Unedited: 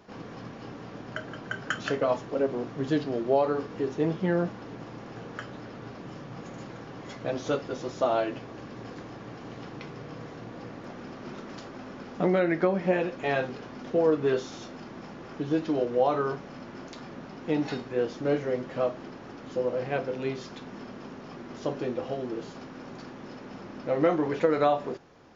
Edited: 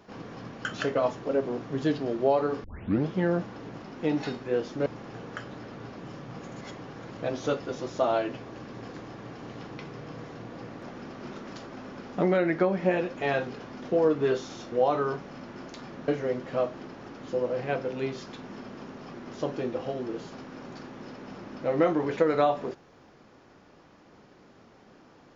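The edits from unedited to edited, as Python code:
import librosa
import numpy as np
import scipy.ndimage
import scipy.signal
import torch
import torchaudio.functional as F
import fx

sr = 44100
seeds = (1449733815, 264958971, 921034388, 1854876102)

y = fx.edit(x, sr, fx.cut(start_s=0.65, length_s=1.06),
    fx.tape_start(start_s=3.7, length_s=0.43),
    fx.reverse_span(start_s=6.63, length_s=0.56),
    fx.cut(start_s=14.74, length_s=1.17),
    fx.move(start_s=17.27, length_s=1.04, to_s=4.88), tone=tone)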